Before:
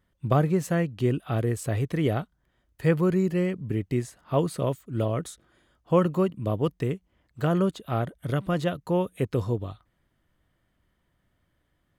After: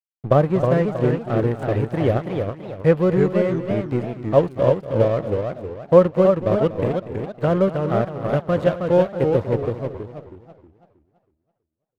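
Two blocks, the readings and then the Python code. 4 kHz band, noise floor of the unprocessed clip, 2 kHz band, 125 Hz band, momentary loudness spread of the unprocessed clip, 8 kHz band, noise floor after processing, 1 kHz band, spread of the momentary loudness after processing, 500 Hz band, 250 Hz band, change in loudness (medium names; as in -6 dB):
no reading, -73 dBFS, +4.5 dB, +4.0 dB, 8 LU, under -10 dB, -78 dBFS, +6.0 dB, 10 LU, +10.0 dB, +4.5 dB, +6.5 dB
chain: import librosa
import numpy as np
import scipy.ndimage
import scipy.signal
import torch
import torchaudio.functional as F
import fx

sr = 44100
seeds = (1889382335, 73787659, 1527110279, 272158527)

p1 = fx.peak_eq(x, sr, hz=560.0, db=9.5, octaves=0.44)
p2 = np.sign(p1) * np.maximum(np.abs(p1) - 10.0 ** (-34.0 / 20.0), 0.0)
p3 = fx.lowpass(p2, sr, hz=2300.0, slope=6)
p4 = p3 + fx.echo_single(p3, sr, ms=240, db=-14.0, dry=0)
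p5 = fx.echo_warbled(p4, sr, ms=324, feedback_pct=35, rate_hz=2.8, cents=211, wet_db=-5.0)
y = p5 * 10.0 ** (4.5 / 20.0)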